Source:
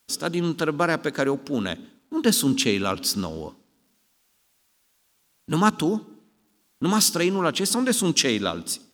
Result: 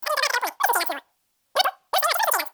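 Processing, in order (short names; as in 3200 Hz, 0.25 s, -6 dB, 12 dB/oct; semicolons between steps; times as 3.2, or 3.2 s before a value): wide varispeed 3.53×; gain +1 dB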